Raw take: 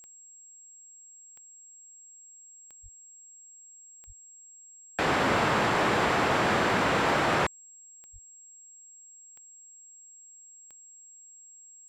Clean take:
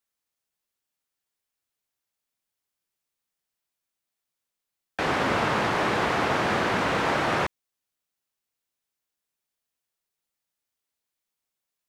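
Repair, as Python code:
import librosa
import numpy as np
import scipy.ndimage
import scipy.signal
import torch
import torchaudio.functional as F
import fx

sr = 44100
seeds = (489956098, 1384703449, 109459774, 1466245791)

y = fx.fix_declip(x, sr, threshold_db=-18.5)
y = fx.fix_declick_ar(y, sr, threshold=10.0)
y = fx.notch(y, sr, hz=7600.0, q=30.0)
y = fx.highpass(y, sr, hz=140.0, slope=24, at=(2.82, 2.94), fade=0.02)
y = fx.highpass(y, sr, hz=140.0, slope=24, at=(4.06, 4.18), fade=0.02)
y = fx.highpass(y, sr, hz=140.0, slope=24, at=(8.12, 8.24), fade=0.02)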